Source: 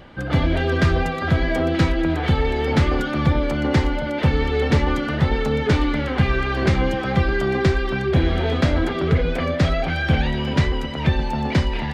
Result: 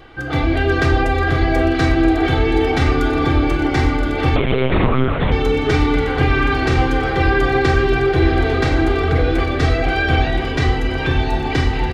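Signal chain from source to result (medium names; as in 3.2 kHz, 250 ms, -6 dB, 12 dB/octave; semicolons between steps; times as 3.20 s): bass shelf 170 Hz -3.5 dB; comb 2.6 ms, depth 72%; echo whose repeats swap between lows and highs 511 ms, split 990 Hz, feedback 72%, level -4.5 dB; simulated room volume 310 m³, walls mixed, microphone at 0.58 m; 4.36–5.32 s: monotone LPC vocoder at 8 kHz 130 Hz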